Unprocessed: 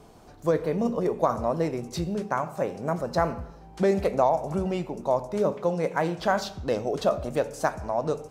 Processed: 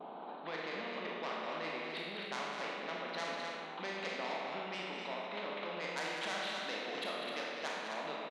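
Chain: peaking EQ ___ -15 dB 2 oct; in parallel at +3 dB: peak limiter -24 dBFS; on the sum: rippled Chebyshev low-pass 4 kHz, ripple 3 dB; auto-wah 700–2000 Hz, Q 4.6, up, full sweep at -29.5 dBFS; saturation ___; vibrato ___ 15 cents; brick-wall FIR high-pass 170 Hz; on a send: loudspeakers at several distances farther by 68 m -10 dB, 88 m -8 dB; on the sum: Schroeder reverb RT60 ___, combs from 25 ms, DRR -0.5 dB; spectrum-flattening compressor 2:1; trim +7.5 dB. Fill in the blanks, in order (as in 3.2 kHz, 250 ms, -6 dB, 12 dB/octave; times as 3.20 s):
1.6 kHz, -39.5 dBFS, 0.45 Hz, 0.97 s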